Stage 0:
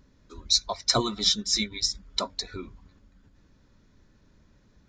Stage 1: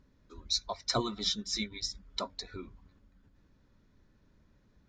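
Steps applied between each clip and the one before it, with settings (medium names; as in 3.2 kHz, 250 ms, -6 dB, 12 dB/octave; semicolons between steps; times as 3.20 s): treble shelf 5.9 kHz -9.5 dB; trim -5.5 dB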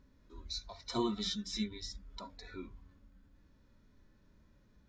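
harmonic-percussive split percussive -18 dB; trim +4 dB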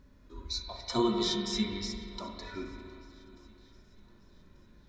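shuffle delay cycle 1188 ms, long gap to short 1.5:1, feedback 35%, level -23 dB; spring tank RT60 2.3 s, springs 40/45 ms, chirp 60 ms, DRR 2.5 dB; trim +5 dB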